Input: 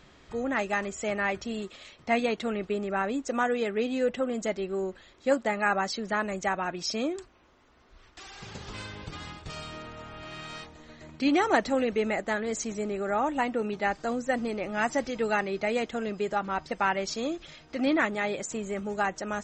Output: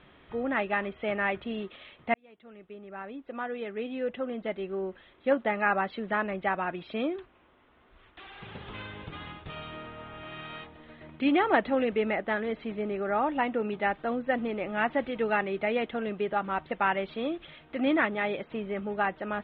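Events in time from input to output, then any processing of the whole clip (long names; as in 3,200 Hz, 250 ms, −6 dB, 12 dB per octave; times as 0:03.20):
0:02.14–0:05.44: fade in
whole clip: Butterworth low-pass 3,600 Hz 72 dB per octave; low-shelf EQ 70 Hz −6.5 dB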